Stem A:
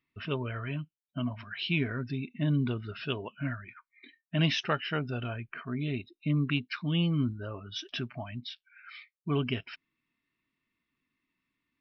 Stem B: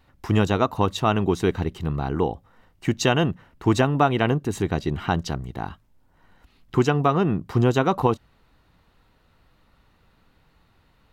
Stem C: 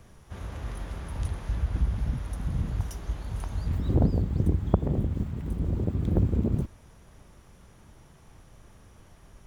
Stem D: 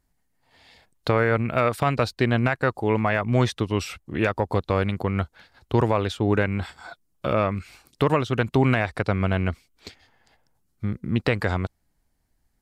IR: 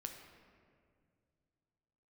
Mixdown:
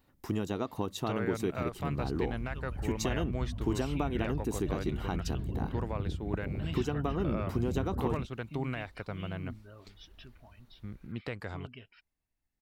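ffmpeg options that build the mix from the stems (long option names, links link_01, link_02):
-filter_complex "[0:a]aphaser=in_gain=1:out_gain=1:delay=2.1:decay=0.35:speed=0.67:type=sinusoidal,adelay=2250,volume=-17dB[link_01];[1:a]aemphasis=mode=production:type=50kf,acompressor=threshold=-21dB:ratio=6,equalizer=frequency=300:width=0.69:gain=8,volume=-12.5dB[link_02];[2:a]afwtdn=0.0224,acompressor=threshold=-34dB:ratio=2.5,adelay=1600,volume=-2dB[link_03];[3:a]volume=-16dB[link_04];[link_01][link_02][link_03][link_04]amix=inputs=4:normalize=0"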